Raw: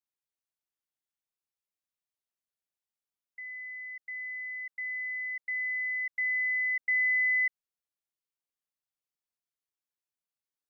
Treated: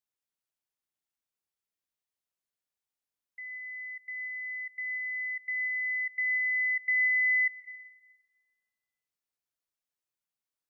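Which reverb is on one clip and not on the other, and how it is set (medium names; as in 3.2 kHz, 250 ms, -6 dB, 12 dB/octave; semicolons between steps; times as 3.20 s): plate-style reverb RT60 1.9 s, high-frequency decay 0.45×, pre-delay 110 ms, DRR 13 dB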